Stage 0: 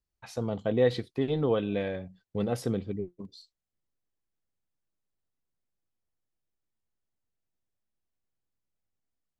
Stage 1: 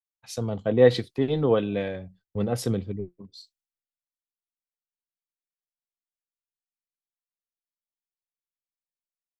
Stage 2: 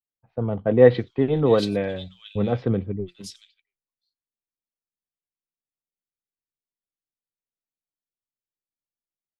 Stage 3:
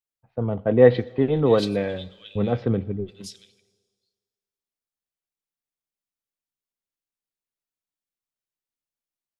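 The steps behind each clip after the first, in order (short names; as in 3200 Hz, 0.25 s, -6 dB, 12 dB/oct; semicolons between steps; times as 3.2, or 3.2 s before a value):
in parallel at +0.5 dB: compressor 4:1, threshold -35 dBFS, peak gain reduction 14 dB; on the sum: three-band expander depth 100%
low-pass opened by the level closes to 450 Hz, open at -20 dBFS; bands offset in time lows, highs 0.68 s, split 3000 Hz; gain +3.5 dB
reverb RT60 1.7 s, pre-delay 6 ms, DRR 18.5 dB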